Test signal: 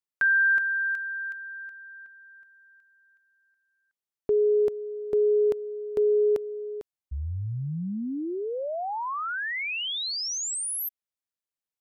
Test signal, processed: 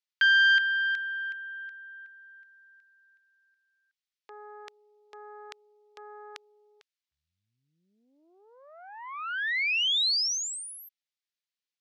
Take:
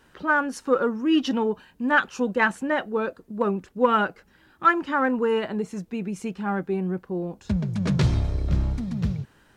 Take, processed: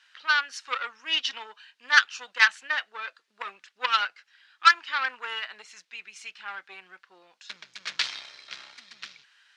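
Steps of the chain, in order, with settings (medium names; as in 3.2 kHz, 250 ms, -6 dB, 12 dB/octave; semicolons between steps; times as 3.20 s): Chebyshev shaper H 3 -16 dB, 6 -27 dB, 7 -41 dB, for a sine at -7 dBFS; Butterworth band-pass 2.8 kHz, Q 0.78; treble shelf 2.3 kHz +10 dB; trim +5 dB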